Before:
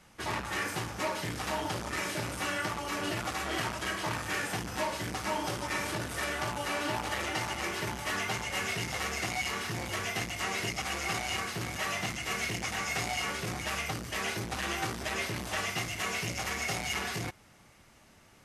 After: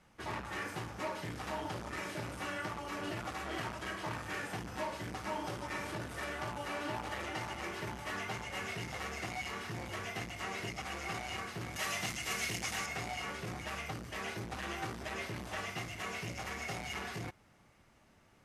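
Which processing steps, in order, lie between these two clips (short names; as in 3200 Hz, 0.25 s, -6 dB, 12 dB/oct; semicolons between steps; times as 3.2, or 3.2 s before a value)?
high shelf 3100 Hz -7.5 dB, from 11.76 s +5 dB, from 12.86 s -7.5 dB; gain -5 dB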